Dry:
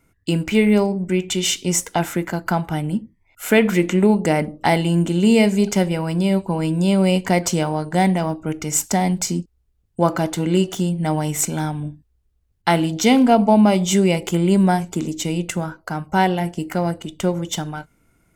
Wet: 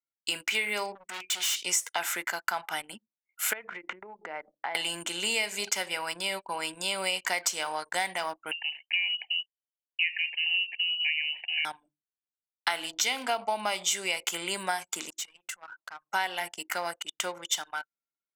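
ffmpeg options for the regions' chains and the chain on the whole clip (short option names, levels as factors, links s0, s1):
-filter_complex "[0:a]asettb=1/sr,asplit=3[s0][s1][s2];[s0]atrim=end=0.954[s3];[s1]atrim=start=0.95:end=1.58,asetpts=PTS-STARTPTS,afade=t=in:d=0.004:c=qsin,afade=t=out:st=0.626:d=0.004:c=qsin,equalizer=f=670:w=3.1:g=-14,volume=23.7,asoftclip=hard,volume=0.0422[s4];[s2]atrim=start=1.576[s5];[s3][s4]acrossfade=d=0.004:c1=hsin:c2=qsin[s6];[s6][s5]acrossfade=d=0.004:c1=qsin:c2=hsin,asettb=1/sr,asplit=3[s7][s8][s9];[s7]atrim=end=3.534[s10];[s8]atrim=start=3.53:end=4.75,asetpts=PTS-STARTPTS,afade=t=in:d=0.004:c=qsin,afade=t=out:st=1.216:d=0.004:c=qsin,lowpass=1500,acompressor=threshold=0.0708:ratio=10:attack=3.2:release=140:knee=1:detection=peak[s11];[s9]atrim=start=4.746[s12];[s10][s11]acrossfade=d=0.004:c1=hsin:c2=qsin[s13];[s13][s12]acrossfade=d=0.004:c1=qsin:c2=hsin,asettb=1/sr,asplit=3[s14][s15][s16];[s14]atrim=end=8.514[s17];[s15]atrim=start=8.51:end=11.65,asetpts=PTS-STARTPTS,afade=t=in:d=0.004:c=qsin,afade=t=out:st=3.136:d=0.004:c=qsin,asuperstop=centerf=1800:order=8:qfactor=1.8,lowshelf=f=440:g=-12,lowpass=f=2600:t=q:w=0.5098,lowpass=f=2600:t=q:w=0.6013,lowpass=f=2600:t=q:w=0.9,lowpass=f=2600:t=q:w=2.563,afreqshift=-3100[s18];[s16]atrim=start=11.646[s19];[s17][s18]acrossfade=d=0.004:c1=hsin:c2=qsin[s20];[s20][s19]acrossfade=d=0.004:c1=qsin:c2=hsin,asettb=1/sr,asplit=3[s21][s22][s23];[s21]atrim=end=15.104[s24];[s22]atrim=start=15.1:end=16.09,asetpts=PTS-STARTPTS,afade=t=in:d=0.004:c=qsin,afade=t=out:st=0.986:d=0.004:c=qsin,acompressor=threshold=0.02:ratio=3:attack=3.2:release=140:knee=1:detection=peak,asoftclip=type=hard:threshold=0.0251[s25];[s23]atrim=start=16.086[s26];[s24][s25]acrossfade=d=0.004:c1=hsin:c2=qsin[s27];[s27][s26]acrossfade=d=0.004:c1=qsin:c2=hsin,highpass=1300,anlmdn=0.0398,acompressor=threshold=0.0398:ratio=5,volume=1.41"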